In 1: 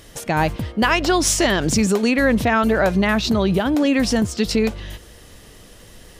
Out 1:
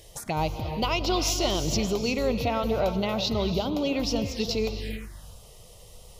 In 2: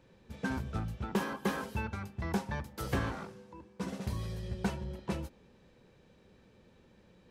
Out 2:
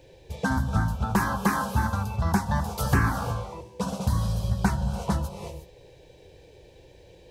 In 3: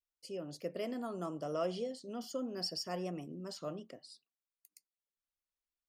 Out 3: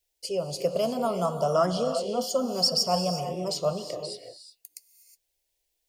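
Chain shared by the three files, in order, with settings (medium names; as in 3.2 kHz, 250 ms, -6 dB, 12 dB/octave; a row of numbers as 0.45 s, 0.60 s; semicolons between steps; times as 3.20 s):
gated-style reverb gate 390 ms rising, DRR 8 dB; dynamic bell 240 Hz, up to -8 dB, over -33 dBFS, Q 1; touch-sensitive phaser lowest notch 210 Hz, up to 1.7 kHz, full sweep at -21.5 dBFS; normalise loudness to -27 LUFS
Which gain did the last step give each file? -4.0 dB, +13.0 dB, +17.0 dB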